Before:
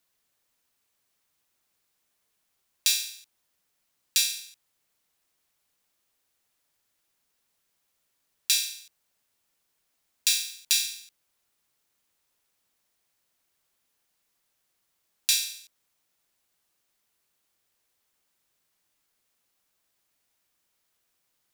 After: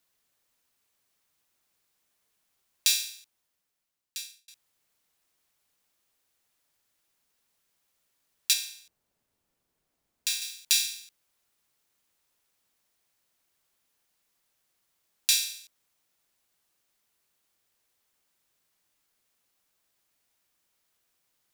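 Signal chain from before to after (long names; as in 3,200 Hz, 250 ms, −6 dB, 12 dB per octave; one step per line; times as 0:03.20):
0:02.87–0:04.48: fade out
0:08.53–0:10.42: tilt shelving filter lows +6.5 dB, about 890 Hz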